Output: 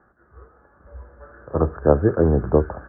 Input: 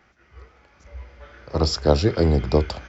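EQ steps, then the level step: rippled Chebyshev low-pass 1.7 kHz, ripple 3 dB; peaking EQ 60 Hz -2 dB; +3.0 dB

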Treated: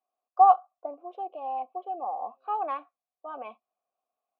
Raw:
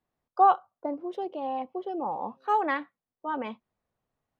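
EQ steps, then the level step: vowel filter a; brick-wall FIR high-pass 190 Hz; band-stop 1.8 kHz, Q 29; +6.0 dB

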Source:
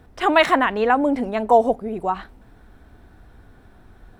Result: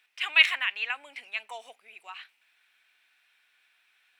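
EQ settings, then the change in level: resonant high-pass 2.5 kHz, resonance Q 4.5; -6.5 dB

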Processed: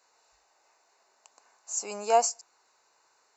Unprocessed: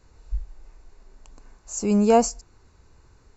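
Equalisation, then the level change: resonant high-pass 720 Hz, resonance Q 1.7; treble shelf 2.6 kHz +8 dB; band-stop 3.3 kHz, Q 11; -7.0 dB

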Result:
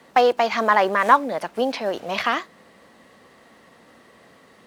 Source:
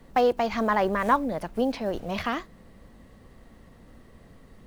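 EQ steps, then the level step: frequency weighting A; +7.5 dB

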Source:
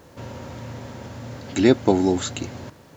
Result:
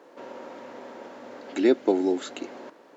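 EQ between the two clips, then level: dynamic bell 930 Hz, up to -7 dB, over -35 dBFS, Q 0.94; high-pass 300 Hz 24 dB/octave; low-pass 1.6 kHz 6 dB/octave; 0.0 dB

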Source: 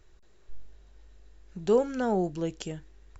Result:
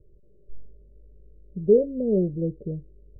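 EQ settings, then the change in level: rippled Chebyshev low-pass 600 Hz, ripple 6 dB; +8.0 dB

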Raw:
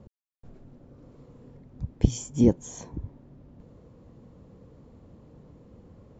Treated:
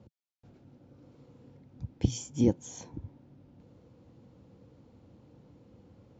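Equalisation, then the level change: cabinet simulation 110–6600 Hz, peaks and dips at 160 Hz -7 dB, 230 Hz -5 dB, 410 Hz -8 dB, 630 Hz -7 dB, 1.1 kHz -8 dB, 1.8 kHz -5 dB; 0.0 dB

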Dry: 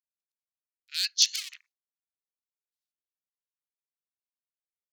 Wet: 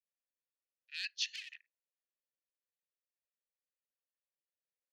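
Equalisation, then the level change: vowel filter e; +6.5 dB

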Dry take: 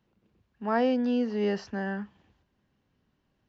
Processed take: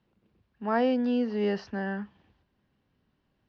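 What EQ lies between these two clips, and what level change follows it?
low-pass 5.3 kHz 24 dB/octave; 0.0 dB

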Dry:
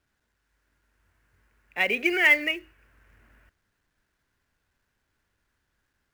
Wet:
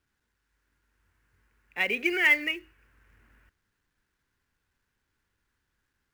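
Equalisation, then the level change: peaking EQ 640 Hz -7.5 dB 0.35 oct; -2.5 dB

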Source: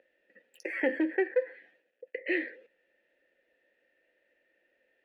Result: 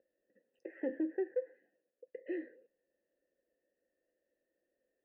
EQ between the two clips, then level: boxcar filter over 39 samples; -5.0 dB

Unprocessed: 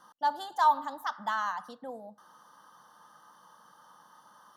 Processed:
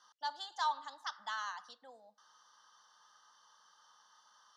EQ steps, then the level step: band-pass filter 5.8 kHz, Q 1.4; distance through air 120 m; +8.5 dB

